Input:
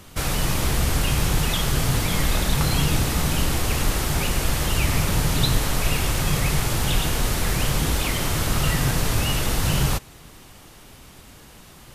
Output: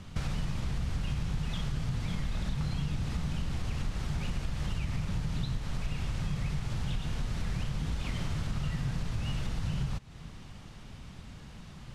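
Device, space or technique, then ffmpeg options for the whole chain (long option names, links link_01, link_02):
jukebox: -af "lowpass=5600,lowshelf=frequency=250:width_type=q:width=1.5:gain=7,acompressor=threshold=-24dB:ratio=6,volume=-5.5dB"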